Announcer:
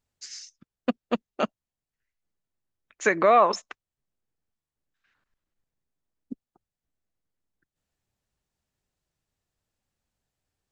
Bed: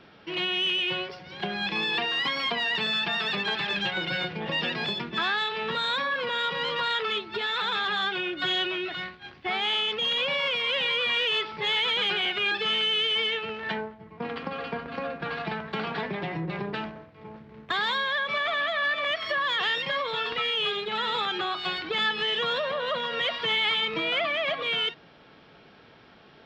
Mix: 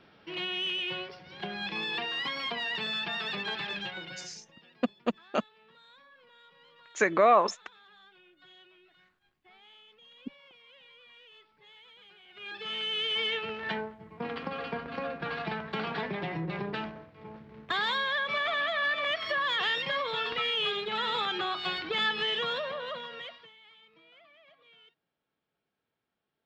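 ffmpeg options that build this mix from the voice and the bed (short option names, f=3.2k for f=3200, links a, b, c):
-filter_complex "[0:a]adelay=3950,volume=-3dB[a];[1:a]volume=21.5dB,afade=t=out:st=3.61:d=0.82:silence=0.0630957,afade=t=in:st=12.28:d=1.09:silence=0.0421697,afade=t=out:st=22.23:d=1.28:silence=0.0334965[b];[a][b]amix=inputs=2:normalize=0"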